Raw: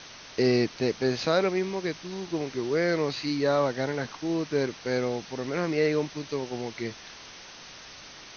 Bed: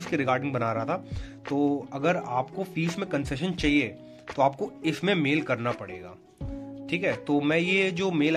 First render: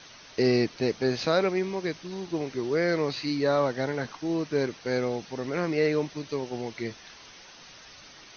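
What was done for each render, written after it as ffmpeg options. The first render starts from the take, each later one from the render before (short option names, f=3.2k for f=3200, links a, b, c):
-af "afftdn=nr=6:nf=-46"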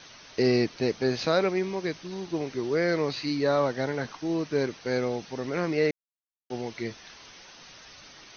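-filter_complex "[0:a]asplit=3[a][b][c];[a]atrim=end=5.91,asetpts=PTS-STARTPTS,afade=t=out:st=5.906:d=0.004:c=hsin[d];[b]atrim=start=5.91:end=6.5,asetpts=PTS-STARTPTS,volume=0[e];[c]atrim=start=6.5,asetpts=PTS-STARTPTS,afade=t=in:d=0.004:c=hsin[f];[d][e][f]concat=n=3:v=0:a=1"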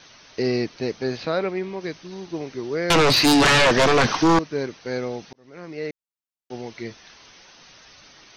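-filter_complex "[0:a]asettb=1/sr,asplit=3[a][b][c];[a]atrim=end=1.174[d];[b]atrim=start=1.17:end=1.81,asetpts=PTS-STARTPTS,afade=t=in:d=0.004:c=qsin,afade=t=out:st=0.636:d=0.004:c=qsin,lowpass=4k[e];[c]atrim=start=1.806[f];[d][e]acrossfade=d=0.004:c1=hsin:c2=qsin[g];[g][f]acrossfade=d=0.004:c1=qsin:c2=hsin,asettb=1/sr,asplit=3[h][i][j];[h]atrim=end=2.904[k];[i]atrim=start=2.9:end=4.39,asetpts=PTS-STARTPTS,afade=t=in:d=0.004:c=qsin,afade=t=out:st=1.486:d=0.004:c=qsin,aeval=exprs='0.237*sin(PI/2*6.31*val(0)/0.237)':c=same[l];[j]atrim=start=4.386[m];[k][l]acrossfade=d=0.004:c1=hsin:c2=qsin[n];[n][m]acrossfade=d=0.004:c1=qsin:c2=hsin,asplit=2[o][p];[o]atrim=end=5.33,asetpts=PTS-STARTPTS,afade=t=out:st=5.326:d=0.004:c=hsin[q];[p]atrim=start=5.33,asetpts=PTS-STARTPTS,afade=t=in:d=1.49:c=qsin[r];[q][r]concat=n=2:v=0:a=1"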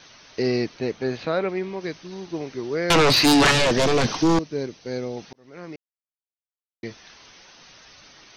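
-filter_complex "[0:a]asettb=1/sr,asplit=3[a][b][c];[a]atrim=end=0.774[d];[b]atrim=start=0.77:end=1.49,asetpts=PTS-STARTPTS,afade=t=in:d=0.004:c=qsin,afade=t=out:st=0.716:d=0.004:c=qsin,equalizer=f=5k:t=o:w=0.53:g=-7[e];[c]atrim=start=1.486[f];[d][e]acrossfade=d=0.004:c1=hsin:c2=qsin[g];[g][f]acrossfade=d=0.004:c1=qsin:c2=hsin,asettb=1/sr,asplit=3[h][i][j];[h]atrim=end=3.514[k];[i]atrim=start=3.51:end=5.17,asetpts=PTS-STARTPTS,afade=t=in:d=0.004:c=qsin,afade=t=out:st=1.656:d=0.004:c=qsin,equalizer=f=1.4k:w=0.69:g=-8[l];[j]atrim=start=5.166[m];[k][l]acrossfade=d=0.004:c1=hsin:c2=qsin[n];[n][m]acrossfade=d=0.004:c1=qsin:c2=hsin,asplit=3[o][p][q];[o]atrim=end=5.76,asetpts=PTS-STARTPTS,afade=t=out:st=5.756:d=0.004:c=hsin[r];[p]atrim=start=5.76:end=6.83,asetpts=PTS-STARTPTS,volume=0[s];[q]atrim=start=6.83,asetpts=PTS-STARTPTS,afade=t=in:d=0.004:c=hsin[t];[r][s][t]concat=n=3:v=0:a=1"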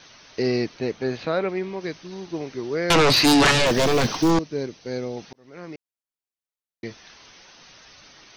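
-filter_complex "[0:a]asettb=1/sr,asplit=3[a][b][c];[a]atrim=end=3.664[d];[b]atrim=start=3.66:end=4.31,asetpts=PTS-STARTPTS,afade=t=in:d=0.004:c=qsin,afade=t=out:st=0.646:d=0.004:c=qsin,acrusher=bits=6:mode=log:mix=0:aa=0.000001[e];[c]atrim=start=4.306[f];[d][e]acrossfade=d=0.004:c1=hsin:c2=qsin[g];[g][f]acrossfade=d=0.004:c1=qsin:c2=hsin"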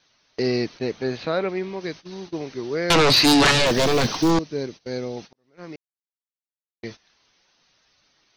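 -af "agate=range=-16dB:threshold=-38dB:ratio=16:detection=peak,equalizer=f=4.1k:t=o:w=0.53:g=3"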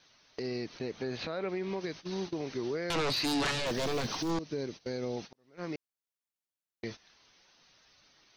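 -af "acompressor=threshold=-25dB:ratio=6,alimiter=level_in=1.5dB:limit=-24dB:level=0:latency=1:release=170,volume=-1.5dB"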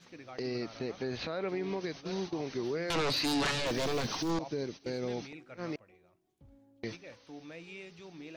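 -filter_complex "[1:a]volume=-23.5dB[a];[0:a][a]amix=inputs=2:normalize=0"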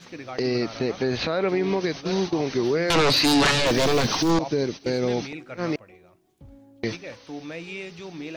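-af "volume=11.5dB"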